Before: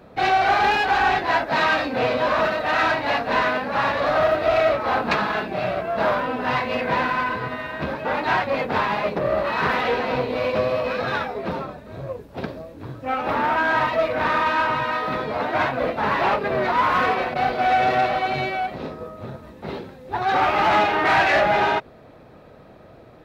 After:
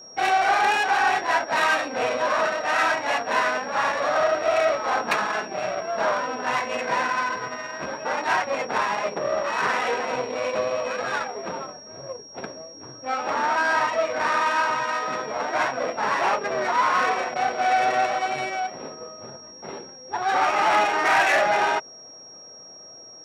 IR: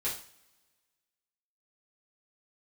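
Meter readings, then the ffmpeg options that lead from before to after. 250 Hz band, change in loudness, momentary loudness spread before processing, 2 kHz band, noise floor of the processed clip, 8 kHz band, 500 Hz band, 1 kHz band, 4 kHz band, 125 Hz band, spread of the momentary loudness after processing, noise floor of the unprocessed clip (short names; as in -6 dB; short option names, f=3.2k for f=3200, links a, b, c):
-7.5 dB, -2.0 dB, 15 LU, -1.0 dB, -44 dBFS, n/a, -3.0 dB, -1.5 dB, -1.0 dB, -13.0 dB, 17 LU, -46 dBFS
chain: -af "adynamicsmooth=sensitivity=2:basefreq=1.6k,aeval=exprs='val(0)+0.00794*sin(2*PI*5600*n/s)':c=same,highpass=f=600:p=1"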